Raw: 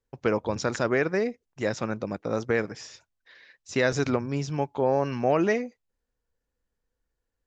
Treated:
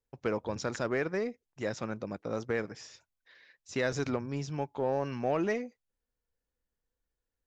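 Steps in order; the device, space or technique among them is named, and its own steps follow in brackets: parallel distortion (in parallel at -11.5 dB: hard clip -25.5 dBFS, distortion -7 dB); on the sum: gain -8 dB

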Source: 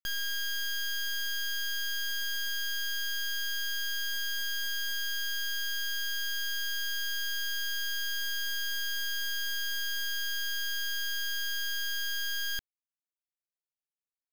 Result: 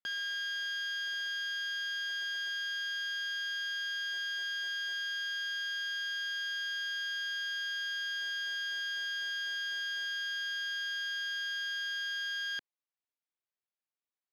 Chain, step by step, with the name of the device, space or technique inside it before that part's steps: early digital voice recorder (BPF 270–3800 Hz; block floating point 7-bit)

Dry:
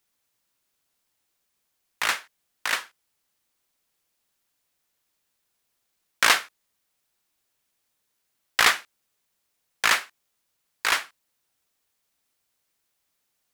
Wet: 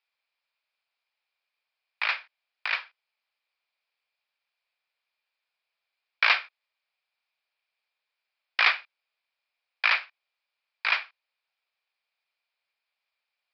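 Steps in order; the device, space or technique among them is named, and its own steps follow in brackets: musical greeting card (downsampling 11025 Hz; HPF 560 Hz 24 dB/oct; bell 2400 Hz +11.5 dB 0.2 oct); gain -5 dB

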